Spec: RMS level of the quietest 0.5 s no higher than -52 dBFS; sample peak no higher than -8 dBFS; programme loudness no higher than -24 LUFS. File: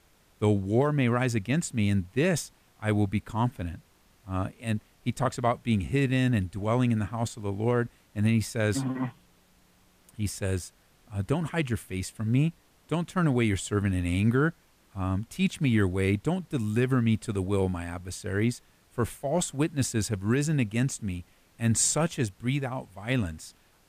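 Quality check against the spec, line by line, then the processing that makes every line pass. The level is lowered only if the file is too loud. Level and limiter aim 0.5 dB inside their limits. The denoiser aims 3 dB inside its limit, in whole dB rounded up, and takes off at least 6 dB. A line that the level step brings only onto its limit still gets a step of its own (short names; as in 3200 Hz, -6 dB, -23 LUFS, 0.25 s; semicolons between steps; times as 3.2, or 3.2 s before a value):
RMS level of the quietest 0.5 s -62 dBFS: OK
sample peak -13.0 dBFS: OK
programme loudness -28.5 LUFS: OK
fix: none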